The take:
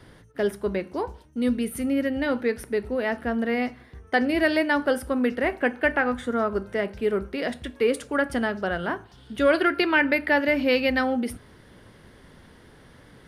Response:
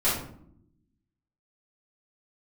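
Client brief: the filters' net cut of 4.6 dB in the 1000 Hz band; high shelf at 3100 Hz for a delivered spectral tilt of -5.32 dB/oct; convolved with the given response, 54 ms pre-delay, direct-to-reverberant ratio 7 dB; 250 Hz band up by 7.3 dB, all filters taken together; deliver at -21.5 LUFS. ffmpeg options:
-filter_complex "[0:a]equalizer=f=250:t=o:g=8.5,equalizer=f=1k:t=o:g=-6.5,highshelf=f=3.1k:g=-6,asplit=2[a][b];[1:a]atrim=start_sample=2205,adelay=54[c];[b][c]afir=irnorm=-1:irlink=0,volume=-19.5dB[d];[a][d]amix=inputs=2:normalize=0,volume=-1.5dB"

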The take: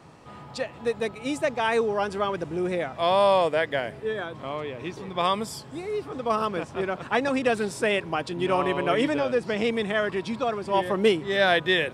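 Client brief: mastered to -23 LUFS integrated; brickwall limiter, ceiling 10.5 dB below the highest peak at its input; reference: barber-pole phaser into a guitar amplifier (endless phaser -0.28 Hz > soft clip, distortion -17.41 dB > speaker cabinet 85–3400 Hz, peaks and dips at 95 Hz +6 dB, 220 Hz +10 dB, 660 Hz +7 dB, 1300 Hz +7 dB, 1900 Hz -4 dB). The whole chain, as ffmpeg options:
-filter_complex "[0:a]alimiter=limit=-19dB:level=0:latency=1,asplit=2[a][b];[b]afreqshift=-0.28[c];[a][c]amix=inputs=2:normalize=1,asoftclip=threshold=-25.5dB,highpass=85,equalizer=f=95:t=q:w=4:g=6,equalizer=f=220:t=q:w=4:g=10,equalizer=f=660:t=q:w=4:g=7,equalizer=f=1.3k:t=q:w=4:g=7,equalizer=f=1.9k:t=q:w=4:g=-4,lowpass=f=3.4k:w=0.5412,lowpass=f=3.4k:w=1.3066,volume=8.5dB"

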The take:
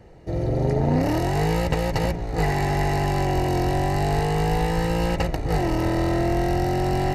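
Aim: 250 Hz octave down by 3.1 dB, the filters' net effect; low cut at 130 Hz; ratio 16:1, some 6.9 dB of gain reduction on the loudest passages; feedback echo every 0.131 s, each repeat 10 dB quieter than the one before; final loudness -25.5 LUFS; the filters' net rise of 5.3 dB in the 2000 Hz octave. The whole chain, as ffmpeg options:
-af "highpass=130,equalizer=f=250:t=o:g=-4.5,equalizer=f=2k:t=o:g=6,acompressor=threshold=-26dB:ratio=16,aecho=1:1:131|262|393|524:0.316|0.101|0.0324|0.0104,volume=4.5dB"

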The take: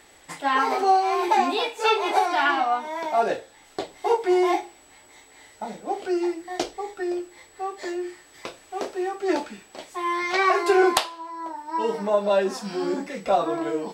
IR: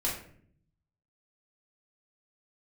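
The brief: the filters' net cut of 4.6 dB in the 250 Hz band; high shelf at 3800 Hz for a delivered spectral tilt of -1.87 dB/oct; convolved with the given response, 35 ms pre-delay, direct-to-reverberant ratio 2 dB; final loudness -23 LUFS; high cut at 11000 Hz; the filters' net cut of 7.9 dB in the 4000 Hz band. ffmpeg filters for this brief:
-filter_complex "[0:a]lowpass=11k,equalizer=f=250:t=o:g=-8.5,highshelf=f=3.8k:g=-8.5,equalizer=f=4k:t=o:g=-5,asplit=2[a][b];[1:a]atrim=start_sample=2205,adelay=35[c];[b][c]afir=irnorm=-1:irlink=0,volume=-8dB[d];[a][d]amix=inputs=2:normalize=0,volume=1dB"

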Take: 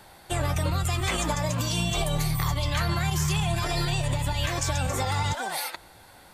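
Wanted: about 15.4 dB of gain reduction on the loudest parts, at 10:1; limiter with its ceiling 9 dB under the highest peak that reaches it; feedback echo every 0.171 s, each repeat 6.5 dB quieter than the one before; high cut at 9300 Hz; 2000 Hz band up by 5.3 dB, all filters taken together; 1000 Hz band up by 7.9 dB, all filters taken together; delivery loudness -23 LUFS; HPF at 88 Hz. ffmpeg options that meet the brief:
-af "highpass=88,lowpass=9.3k,equalizer=f=1k:t=o:g=9,equalizer=f=2k:t=o:g=4,acompressor=threshold=-35dB:ratio=10,alimiter=level_in=7.5dB:limit=-24dB:level=0:latency=1,volume=-7.5dB,aecho=1:1:171|342|513|684|855|1026:0.473|0.222|0.105|0.0491|0.0231|0.0109,volume=16.5dB"

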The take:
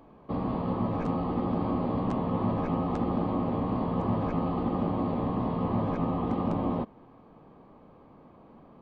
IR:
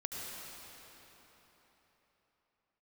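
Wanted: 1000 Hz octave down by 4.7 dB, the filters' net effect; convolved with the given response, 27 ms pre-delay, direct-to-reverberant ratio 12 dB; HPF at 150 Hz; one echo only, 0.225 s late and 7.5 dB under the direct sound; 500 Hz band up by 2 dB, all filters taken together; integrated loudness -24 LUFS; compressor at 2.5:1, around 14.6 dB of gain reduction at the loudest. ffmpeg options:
-filter_complex "[0:a]highpass=150,equalizer=f=500:t=o:g=4.5,equalizer=f=1k:t=o:g=-8,acompressor=threshold=-48dB:ratio=2.5,aecho=1:1:225:0.422,asplit=2[a][b];[1:a]atrim=start_sample=2205,adelay=27[c];[b][c]afir=irnorm=-1:irlink=0,volume=-13.5dB[d];[a][d]amix=inputs=2:normalize=0,volume=20dB"

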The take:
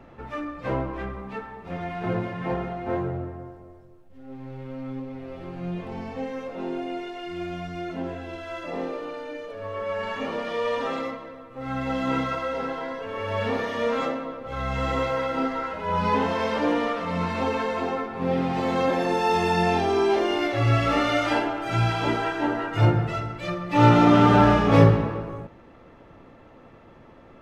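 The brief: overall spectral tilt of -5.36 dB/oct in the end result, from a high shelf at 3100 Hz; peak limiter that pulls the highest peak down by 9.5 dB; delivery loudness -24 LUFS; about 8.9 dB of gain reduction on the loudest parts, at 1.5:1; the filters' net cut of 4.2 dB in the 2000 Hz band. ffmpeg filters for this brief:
-af "equalizer=f=2k:t=o:g=-7.5,highshelf=f=3.1k:g=5.5,acompressor=threshold=-36dB:ratio=1.5,volume=9dB,alimiter=limit=-12.5dB:level=0:latency=1"

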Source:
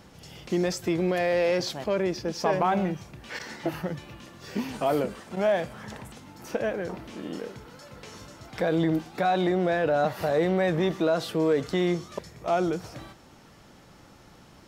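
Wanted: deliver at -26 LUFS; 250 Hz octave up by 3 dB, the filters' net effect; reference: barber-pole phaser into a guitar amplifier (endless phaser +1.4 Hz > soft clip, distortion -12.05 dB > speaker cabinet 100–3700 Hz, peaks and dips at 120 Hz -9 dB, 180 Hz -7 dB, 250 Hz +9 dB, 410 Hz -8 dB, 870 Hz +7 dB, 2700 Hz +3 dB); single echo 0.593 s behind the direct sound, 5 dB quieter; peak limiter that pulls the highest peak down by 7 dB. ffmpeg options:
-filter_complex "[0:a]equalizer=f=250:t=o:g=6,alimiter=limit=-19.5dB:level=0:latency=1,aecho=1:1:593:0.562,asplit=2[a][b];[b]afreqshift=1.4[c];[a][c]amix=inputs=2:normalize=1,asoftclip=threshold=-28.5dB,highpass=100,equalizer=f=120:t=q:w=4:g=-9,equalizer=f=180:t=q:w=4:g=-7,equalizer=f=250:t=q:w=4:g=9,equalizer=f=410:t=q:w=4:g=-8,equalizer=f=870:t=q:w=4:g=7,equalizer=f=2.7k:t=q:w=4:g=3,lowpass=f=3.7k:w=0.5412,lowpass=f=3.7k:w=1.3066,volume=10dB"

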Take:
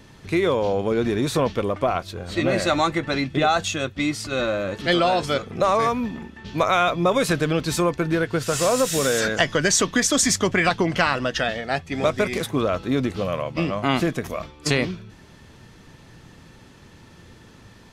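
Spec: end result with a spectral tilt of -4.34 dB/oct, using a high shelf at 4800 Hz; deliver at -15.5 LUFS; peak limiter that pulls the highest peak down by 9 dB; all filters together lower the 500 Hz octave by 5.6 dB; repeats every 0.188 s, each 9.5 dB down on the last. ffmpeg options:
-af "equalizer=f=500:t=o:g=-7,highshelf=f=4.8k:g=-6,alimiter=limit=-14.5dB:level=0:latency=1,aecho=1:1:188|376|564|752:0.335|0.111|0.0365|0.012,volume=10dB"

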